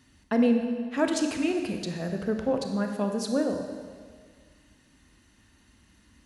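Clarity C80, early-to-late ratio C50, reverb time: 7.0 dB, 5.0 dB, 1.8 s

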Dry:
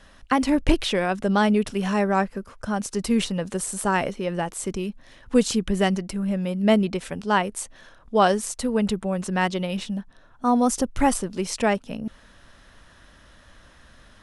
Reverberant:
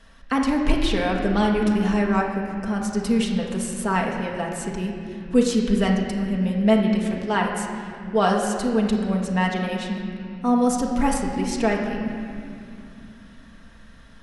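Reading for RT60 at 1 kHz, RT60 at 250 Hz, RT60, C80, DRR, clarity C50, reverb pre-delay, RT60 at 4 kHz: 2.3 s, 4.4 s, 2.5 s, 4.5 dB, -1.0 dB, 3.0 dB, 4 ms, 1.9 s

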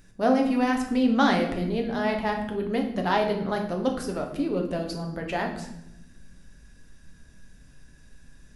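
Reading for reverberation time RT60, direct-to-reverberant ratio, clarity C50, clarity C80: 0.90 s, 2.0 dB, 7.5 dB, 10.5 dB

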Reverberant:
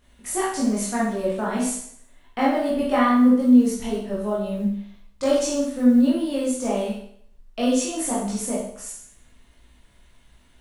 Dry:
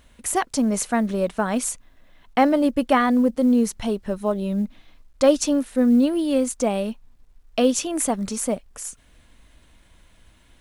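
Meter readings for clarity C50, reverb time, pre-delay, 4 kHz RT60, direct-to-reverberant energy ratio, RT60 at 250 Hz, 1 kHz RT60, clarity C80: 1.5 dB, 0.60 s, 16 ms, 0.60 s, -8.0 dB, 0.60 s, 0.60 s, 6.0 dB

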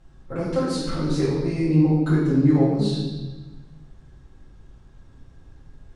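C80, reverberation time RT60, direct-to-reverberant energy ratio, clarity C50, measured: 2.5 dB, 1.2 s, -12.0 dB, -0.5 dB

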